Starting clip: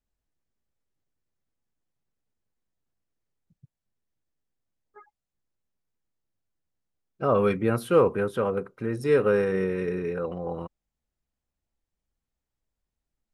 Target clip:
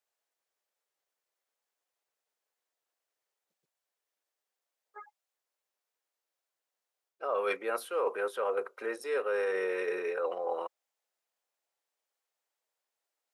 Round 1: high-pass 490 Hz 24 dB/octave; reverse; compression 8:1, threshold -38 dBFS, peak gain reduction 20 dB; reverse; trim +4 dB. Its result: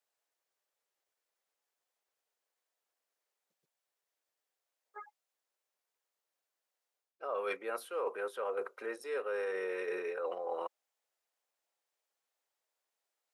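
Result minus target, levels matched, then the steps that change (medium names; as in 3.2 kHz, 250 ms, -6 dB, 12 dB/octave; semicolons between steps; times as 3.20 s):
compression: peak gain reduction +5 dB
change: compression 8:1, threshold -32 dBFS, peak gain reduction 14.5 dB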